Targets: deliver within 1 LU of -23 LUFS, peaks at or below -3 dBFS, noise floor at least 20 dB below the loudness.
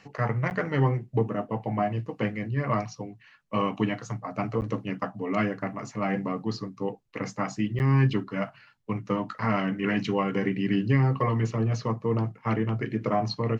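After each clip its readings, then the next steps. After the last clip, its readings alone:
dropouts 3; longest dropout 9.4 ms; loudness -28.0 LUFS; peak -11.0 dBFS; loudness target -23.0 LUFS
-> interpolate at 0.5/4.61/7.79, 9.4 ms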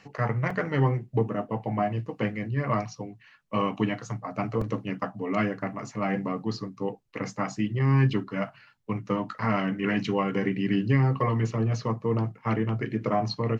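dropouts 0; loudness -28.0 LUFS; peak -11.0 dBFS; loudness target -23.0 LUFS
-> gain +5 dB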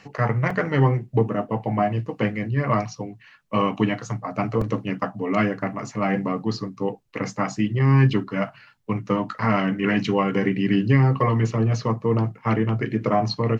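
loudness -23.0 LUFS; peak -6.0 dBFS; noise floor -52 dBFS

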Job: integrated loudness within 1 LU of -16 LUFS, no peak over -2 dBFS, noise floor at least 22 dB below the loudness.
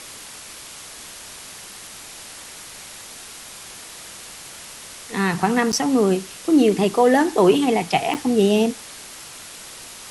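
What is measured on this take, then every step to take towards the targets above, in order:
dropouts 2; longest dropout 8.9 ms; noise floor -39 dBFS; noise floor target -41 dBFS; loudness -19.0 LUFS; peak -3.5 dBFS; loudness target -16.0 LUFS
-> interpolate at 5.72/8.14, 8.9 ms; noise print and reduce 6 dB; gain +3 dB; limiter -2 dBFS

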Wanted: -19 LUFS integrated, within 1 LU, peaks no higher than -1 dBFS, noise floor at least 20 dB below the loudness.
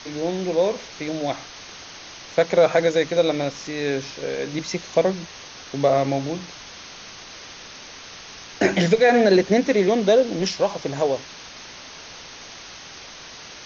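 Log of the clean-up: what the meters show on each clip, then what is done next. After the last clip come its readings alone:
noise floor -41 dBFS; noise floor target -42 dBFS; loudness -21.5 LUFS; peak -6.0 dBFS; loudness target -19.0 LUFS
-> denoiser 6 dB, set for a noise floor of -41 dBFS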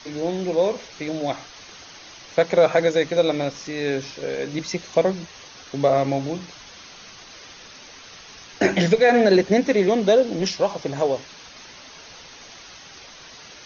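noise floor -44 dBFS; loudness -21.5 LUFS; peak -6.0 dBFS; loudness target -19.0 LUFS
-> gain +2.5 dB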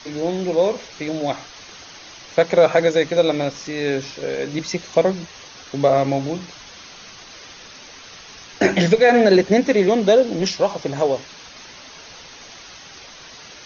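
loudness -19.0 LUFS; peak -3.5 dBFS; noise floor -41 dBFS

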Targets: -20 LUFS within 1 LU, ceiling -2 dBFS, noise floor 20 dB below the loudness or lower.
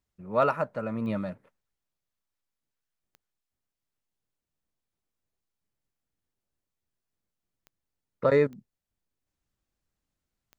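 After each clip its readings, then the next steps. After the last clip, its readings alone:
clicks 5; loudness -27.5 LUFS; peak -11.5 dBFS; loudness target -20.0 LUFS
-> de-click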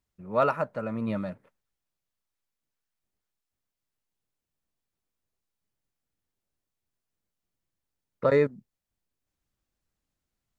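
clicks 0; loudness -27.5 LUFS; peak -11.5 dBFS; loudness target -20.0 LUFS
-> gain +7.5 dB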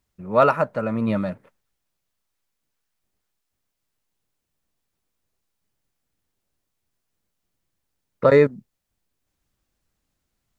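loudness -20.0 LUFS; peak -4.0 dBFS; noise floor -79 dBFS

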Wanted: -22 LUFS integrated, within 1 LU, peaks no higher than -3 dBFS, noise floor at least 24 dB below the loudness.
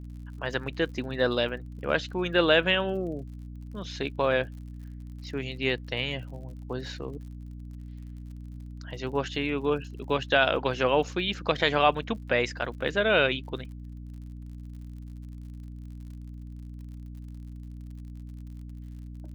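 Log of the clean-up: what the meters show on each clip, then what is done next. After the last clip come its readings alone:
ticks 54/s; hum 60 Hz; harmonics up to 300 Hz; hum level -38 dBFS; loudness -27.5 LUFS; peak -7.5 dBFS; loudness target -22.0 LUFS
-> de-click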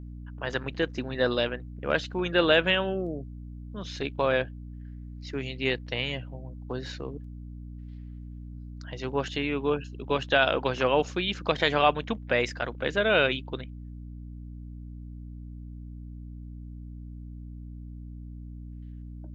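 ticks 0.16/s; hum 60 Hz; harmonics up to 300 Hz; hum level -38 dBFS
-> de-hum 60 Hz, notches 5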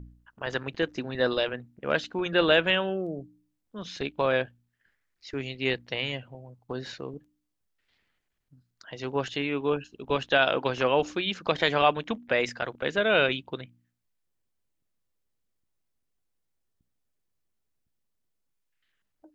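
hum none; loudness -27.5 LUFS; peak -7.5 dBFS; loudness target -22.0 LUFS
-> gain +5.5 dB; limiter -3 dBFS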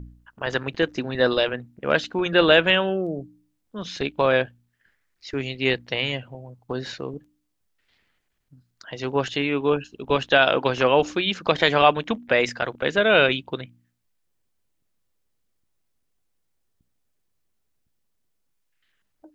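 loudness -22.0 LUFS; peak -3.0 dBFS; noise floor -73 dBFS

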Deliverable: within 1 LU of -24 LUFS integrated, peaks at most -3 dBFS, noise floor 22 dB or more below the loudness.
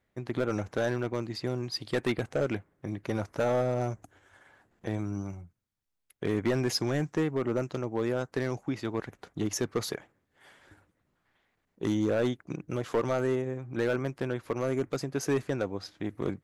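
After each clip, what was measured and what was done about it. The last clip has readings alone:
clipped 1.0%; flat tops at -21.0 dBFS; loudness -31.5 LUFS; peak -21.0 dBFS; loudness target -24.0 LUFS
-> clip repair -21 dBFS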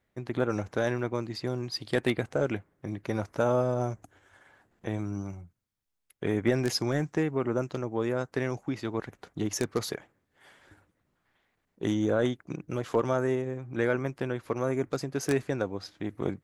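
clipped 0.0%; loudness -30.5 LUFS; peak -12.0 dBFS; loudness target -24.0 LUFS
-> gain +6.5 dB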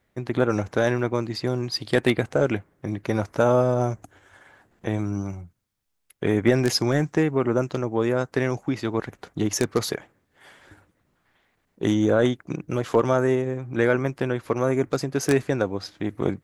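loudness -24.0 LUFS; peak -5.5 dBFS; noise floor -72 dBFS

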